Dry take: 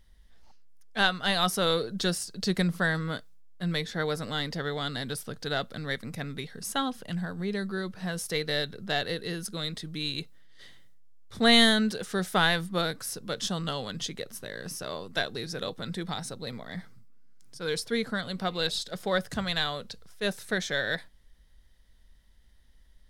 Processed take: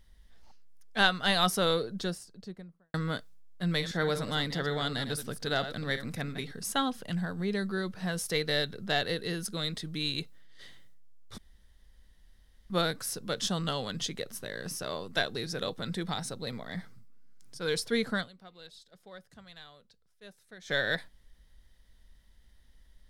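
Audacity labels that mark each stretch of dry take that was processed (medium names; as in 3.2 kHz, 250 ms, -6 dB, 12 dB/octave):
1.380000	2.940000	studio fade out
3.690000	6.530000	chunks repeated in reverse 113 ms, level -10 dB
11.380000	12.700000	room tone
18.220000	20.710000	dip -21.5 dB, fades 0.30 s exponential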